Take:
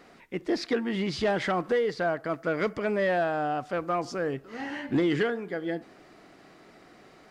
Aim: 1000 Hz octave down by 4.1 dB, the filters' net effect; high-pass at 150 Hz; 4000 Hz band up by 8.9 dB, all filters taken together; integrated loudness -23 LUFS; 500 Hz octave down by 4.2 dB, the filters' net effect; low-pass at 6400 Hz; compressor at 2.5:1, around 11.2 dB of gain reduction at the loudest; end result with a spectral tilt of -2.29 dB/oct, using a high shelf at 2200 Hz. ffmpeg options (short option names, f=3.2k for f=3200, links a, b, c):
-af "highpass=150,lowpass=6.4k,equalizer=f=500:t=o:g=-4,equalizer=f=1k:t=o:g=-6,highshelf=f=2.2k:g=5.5,equalizer=f=4k:t=o:g=7.5,acompressor=threshold=-40dB:ratio=2.5,volume=16dB"